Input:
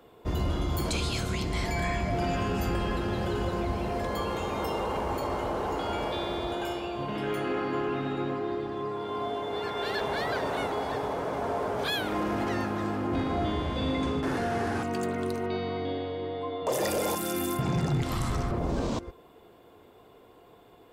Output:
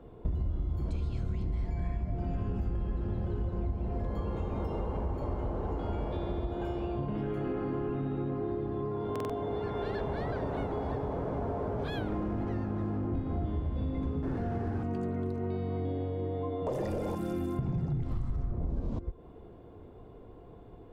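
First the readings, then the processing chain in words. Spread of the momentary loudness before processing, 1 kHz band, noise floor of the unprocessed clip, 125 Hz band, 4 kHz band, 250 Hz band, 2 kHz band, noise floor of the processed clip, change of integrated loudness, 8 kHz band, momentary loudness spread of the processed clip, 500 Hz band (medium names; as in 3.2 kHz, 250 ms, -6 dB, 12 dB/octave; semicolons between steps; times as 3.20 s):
4 LU, -9.5 dB, -55 dBFS, 0.0 dB, -18.0 dB, -3.0 dB, -14.0 dB, -50 dBFS, -4.0 dB, under -20 dB, 2 LU, -5.0 dB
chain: tilt EQ -4.5 dB/octave; compression 6:1, threshold -27 dBFS, peak gain reduction 18.5 dB; buffer glitch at 9.11 s, samples 2048, times 3; trim -3 dB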